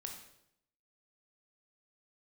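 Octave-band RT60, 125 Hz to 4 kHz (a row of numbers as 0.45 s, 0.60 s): 0.90 s, 0.85 s, 0.80 s, 0.70 s, 0.70 s, 0.65 s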